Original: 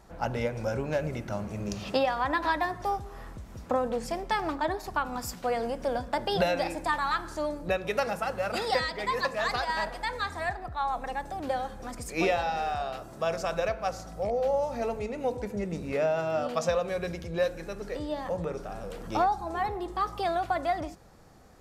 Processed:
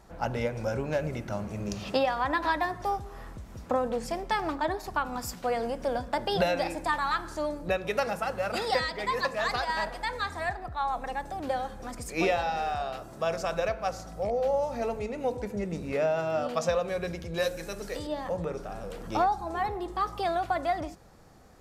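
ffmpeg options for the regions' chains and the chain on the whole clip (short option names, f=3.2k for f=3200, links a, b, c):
-filter_complex "[0:a]asettb=1/sr,asplit=3[a][b][c];[a]atrim=end=17.344[d];[b]atrim=start=17.34:end=18.07,asetpts=PTS-STARTPTS,afade=t=in:d=0.004:c=qsin,afade=t=out:st=0.726:d=0.004:c=qsin,highshelf=f=4k:g=12,bandreject=f=60:t=h:w=6,bandreject=f=120:t=h:w=6,bandreject=f=180:t=h:w=6,bandreject=f=240:t=h:w=6,bandreject=f=300:t=h:w=6,bandreject=f=360:t=h:w=6,bandreject=f=420:t=h:w=6,bandreject=f=480:t=h:w=6,bandreject=f=540:t=h:w=6,bandreject=f=600:t=h:w=6[e];[c]atrim=start=18.066[f];[d][e]acrossfade=d=0.004:c1=hsin:c2=qsin[g];[g][f]acrossfade=d=0.004:c1=qsin:c2=hsin"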